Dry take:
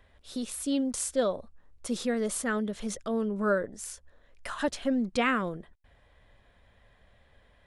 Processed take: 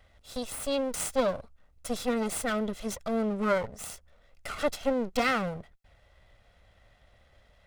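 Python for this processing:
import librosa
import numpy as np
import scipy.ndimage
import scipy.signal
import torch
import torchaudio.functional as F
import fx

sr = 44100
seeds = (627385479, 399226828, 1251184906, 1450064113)

y = fx.lower_of_two(x, sr, delay_ms=1.5)
y = fx.notch(y, sr, hz=1700.0, q=21.0)
y = y * librosa.db_to_amplitude(1.5)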